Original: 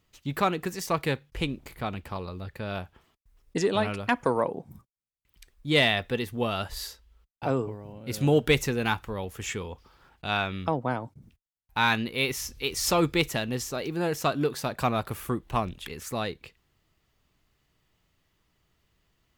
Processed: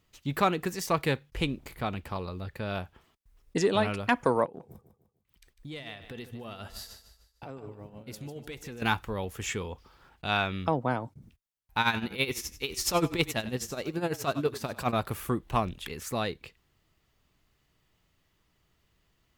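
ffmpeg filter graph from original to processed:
-filter_complex "[0:a]asettb=1/sr,asplit=3[a][b][c];[a]atrim=end=4.454[d];[b]atrim=start=4.45:end=8.82,asetpts=PTS-STARTPTS,afade=t=in:d=0.004:c=qsin,afade=t=out:st=4.366:d=0.004:c=qsin,tremolo=f=6.8:d=0.75,acompressor=threshold=-37dB:ratio=12:attack=3.2:release=140:knee=1:detection=peak,aecho=1:1:150|300|450|600:0.266|0.104|0.0405|0.0158,atrim=end_sample=192717[e];[c]atrim=start=8.816[f];[d][e]acrossfade=d=0.004:c1=hsin:c2=qsin[g];[g][f]acrossfade=d=0.004:c1=qsin:c2=hsin,asettb=1/sr,asplit=3[h][i][j];[h]atrim=end=11.804[k];[i]atrim=start=11.8:end=14.93,asetpts=PTS-STARTPTS,afade=t=in:d=0.004:c=qsin,afade=t=out:st=3.126:d=0.004:c=qsin,asplit=4[l][m][n][o];[m]adelay=99,afreqshift=-32,volume=-15dB[p];[n]adelay=198,afreqshift=-64,volume=-24.4dB[q];[o]adelay=297,afreqshift=-96,volume=-33.7dB[r];[l][p][q][r]amix=inputs=4:normalize=0,atrim=end_sample=138033,tremolo=f=12:d=0.74[s];[j]atrim=start=14.926[t];[k][s]acrossfade=d=0.004:c1=hsin:c2=qsin[u];[u][t]acrossfade=d=0.004:c1=qsin:c2=hsin"

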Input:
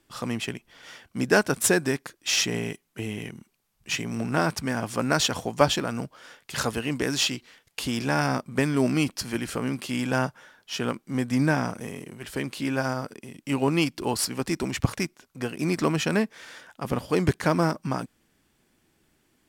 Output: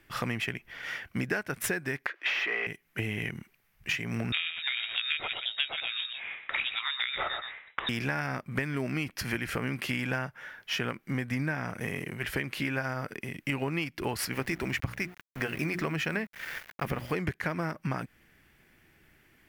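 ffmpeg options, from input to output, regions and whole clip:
-filter_complex "[0:a]asettb=1/sr,asplit=3[a][b][c];[a]atrim=end=2.064[d];[b]atrim=start=2.06:end=2.67,asetpts=PTS-STARTPTS,afade=t=in:d=0.004:c=qsin,afade=t=out:st=0.606:d=0.004:c=qsin,asplit=2[e][f];[f]highpass=f=720:p=1,volume=23dB,asoftclip=type=tanh:threshold=-10.5dB[g];[e][g]amix=inputs=2:normalize=0,lowpass=f=4.3k:p=1,volume=-6dB,acrossover=split=320 3800:gain=0.0708 1 0.1[h][i][j];[h][i][j]amix=inputs=3:normalize=0[k];[c]atrim=start=2.666[l];[d][k]acrossfade=d=0.004:c1=hsin:c2=qsin[m];[m][l]acrossfade=d=0.004:c1=qsin:c2=hsin,asettb=1/sr,asplit=3[n][o][p];[n]atrim=end=4.324[q];[o]atrim=start=4.32:end=7.89,asetpts=PTS-STARTPTS,afade=t=in:d=0.004:c=qsin,afade=t=out:st=3.566:d=0.004:c=qsin,lowpass=f=3.3k:t=q:w=0.5098,lowpass=f=3.3k:t=q:w=0.6013,lowpass=f=3.3k:t=q:w=0.9,lowpass=f=3.3k:t=q:w=2.563,afreqshift=-3900,aecho=1:1:122:0.299,atrim=end_sample=157437[r];[p]atrim=start=7.886[s];[q][r]acrossfade=d=0.004:c1=hsin:c2=qsin[t];[t][s]acrossfade=d=0.004:c1=qsin:c2=hsin,asettb=1/sr,asplit=3[u][v][w];[u]atrim=end=14.334[x];[v]atrim=start=14.33:end=17.15,asetpts=PTS-STARTPTS,afade=t=in:d=0.004:c=qsin,afade=t=out:st=2.816:d=0.004:c=qsin,bandreject=f=60:t=h:w=6,bandreject=f=120:t=h:w=6,bandreject=f=180:t=h:w=6,bandreject=f=240:t=h:w=6,bandreject=f=300:t=h:w=6,bandreject=f=360:t=h:w=6,aeval=exprs='val(0)*gte(abs(val(0)),0.00708)':c=same[y];[w]atrim=start=17.146[z];[x][y]acrossfade=d=0.004:c1=hsin:c2=qsin[aa];[aa][z]acrossfade=d=0.004:c1=qsin:c2=hsin,equalizer=f=250:t=o:w=1:g=-6,equalizer=f=500:t=o:w=1:g=-3,equalizer=f=1k:t=o:w=1:g=-5,equalizer=f=2k:t=o:w=1:g=8,equalizer=f=4k:t=o:w=1:g=-6,equalizer=f=8k:t=o:w=1:g=-11,acompressor=threshold=-35dB:ratio=10,volume=7dB"

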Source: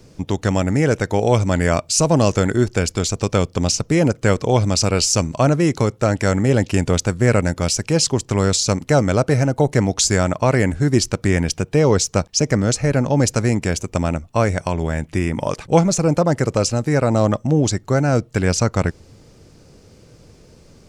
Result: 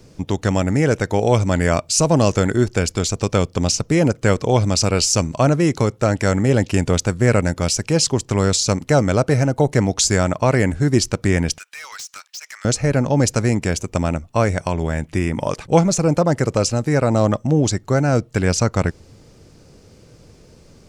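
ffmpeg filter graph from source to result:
-filter_complex "[0:a]asettb=1/sr,asplit=3[a][b][c];[a]atrim=end=11.584[d];[b]atrim=start=11.58:end=12.65,asetpts=PTS-STARTPTS,afade=t=in:d=0.004:c=qsin,afade=t=out:st=1.066:d=0.004:c=qsin,highpass=f=1.4k:w=0.5412,highpass=f=1.4k:w=1.3066,acompressor=threshold=-24dB:ratio=6:attack=3.2:release=140:knee=1:detection=peak,volume=30dB,asoftclip=hard,volume=-30dB[e];[c]atrim=start=12.646[f];[d][e]acrossfade=d=0.004:c1=hsin:c2=qsin[g];[g][f]acrossfade=d=0.004:c1=qsin:c2=hsin"

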